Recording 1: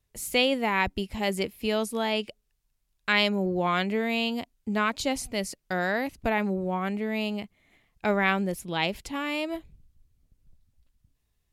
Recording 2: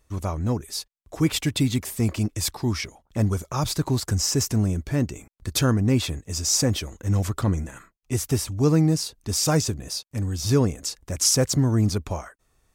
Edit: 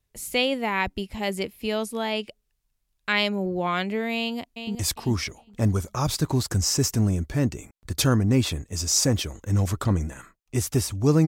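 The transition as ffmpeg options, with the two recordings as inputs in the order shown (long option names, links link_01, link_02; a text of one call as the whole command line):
ffmpeg -i cue0.wav -i cue1.wav -filter_complex "[0:a]apad=whole_dur=11.27,atrim=end=11.27,atrim=end=4.752[link_01];[1:a]atrim=start=2.318:end=8.84[link_02];[link_01][link_02]acrossfade=duration=0.004:curve1=hsin:curve2=hsin,asplit=2[link_03][link_04];[link_04]afade=type=in:start_time=4.16:duration=0.01,afade=type=out:start_time=4.75:duration=0.01,aecho=0:1:400|800|1200:0.375837|0.0751675|0.0150335[link_05];[link_03][link_05]amix=inputs=2:normalize=0" out.wav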